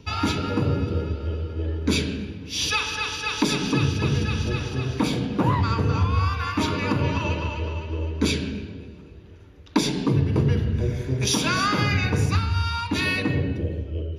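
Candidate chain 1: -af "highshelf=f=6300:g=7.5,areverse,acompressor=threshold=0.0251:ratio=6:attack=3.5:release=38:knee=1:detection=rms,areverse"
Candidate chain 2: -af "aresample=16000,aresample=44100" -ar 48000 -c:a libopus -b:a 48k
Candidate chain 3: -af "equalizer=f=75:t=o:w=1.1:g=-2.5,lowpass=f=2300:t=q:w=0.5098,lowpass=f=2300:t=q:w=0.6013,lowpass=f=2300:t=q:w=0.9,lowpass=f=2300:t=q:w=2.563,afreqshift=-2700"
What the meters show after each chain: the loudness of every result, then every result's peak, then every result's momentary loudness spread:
-34.5 LUFS, -24.5 LUFS, -22.5 LUFS; -22.0 dBFS, -7.5 dBFS, -7.0 dBFS; 4 LU, 8 LU, 10 LU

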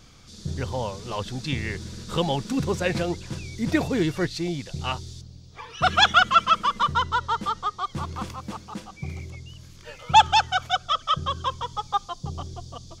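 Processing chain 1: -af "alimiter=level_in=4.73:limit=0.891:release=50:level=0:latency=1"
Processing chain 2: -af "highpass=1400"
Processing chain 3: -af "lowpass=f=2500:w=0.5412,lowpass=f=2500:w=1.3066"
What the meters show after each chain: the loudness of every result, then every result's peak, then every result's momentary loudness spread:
-14.5 LUFS, -27.5 LUFS, -25.0 LUFS; -1.0 dBFS, -5.5 dBFS, -6.0 dBFS; 16 LU, 24 LU, 19 LU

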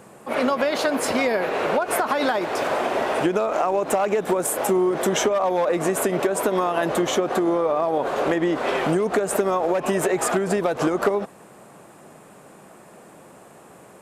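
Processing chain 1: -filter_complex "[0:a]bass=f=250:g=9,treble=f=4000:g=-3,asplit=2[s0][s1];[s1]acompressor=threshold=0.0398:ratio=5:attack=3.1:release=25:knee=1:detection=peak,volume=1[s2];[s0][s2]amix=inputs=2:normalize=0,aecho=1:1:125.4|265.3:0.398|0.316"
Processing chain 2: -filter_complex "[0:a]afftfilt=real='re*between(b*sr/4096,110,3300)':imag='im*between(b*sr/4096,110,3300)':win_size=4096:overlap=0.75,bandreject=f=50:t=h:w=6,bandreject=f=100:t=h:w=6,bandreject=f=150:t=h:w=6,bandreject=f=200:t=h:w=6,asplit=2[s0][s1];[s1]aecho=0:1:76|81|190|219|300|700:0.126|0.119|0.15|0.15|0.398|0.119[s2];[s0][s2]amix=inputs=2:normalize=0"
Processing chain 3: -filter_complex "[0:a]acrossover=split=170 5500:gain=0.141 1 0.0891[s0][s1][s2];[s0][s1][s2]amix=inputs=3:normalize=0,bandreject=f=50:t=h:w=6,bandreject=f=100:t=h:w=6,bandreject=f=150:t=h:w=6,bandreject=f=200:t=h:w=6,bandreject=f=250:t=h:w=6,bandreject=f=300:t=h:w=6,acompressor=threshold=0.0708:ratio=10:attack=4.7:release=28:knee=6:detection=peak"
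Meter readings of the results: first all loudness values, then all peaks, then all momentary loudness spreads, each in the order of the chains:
-17.0 LUFS, -21.5 LUFS, -26.5 LUFS; -4.0 dBFS, -8.5 dBFS, -11.5 dBFS; 2 LU, 2 LU, 1 LU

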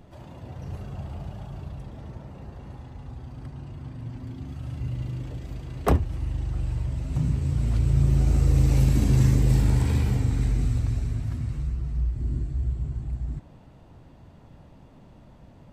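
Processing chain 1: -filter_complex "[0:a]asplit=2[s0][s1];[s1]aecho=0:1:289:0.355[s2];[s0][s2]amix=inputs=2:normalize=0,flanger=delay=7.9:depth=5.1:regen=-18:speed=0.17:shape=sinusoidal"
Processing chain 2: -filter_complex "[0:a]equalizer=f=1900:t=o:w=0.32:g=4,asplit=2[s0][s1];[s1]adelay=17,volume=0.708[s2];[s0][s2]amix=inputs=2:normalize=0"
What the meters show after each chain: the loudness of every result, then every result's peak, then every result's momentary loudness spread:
-29.5 LUFS, -23.0 LUFS; -12.0 dBFS, -5.5 dBFS; 20 LU, 20 LU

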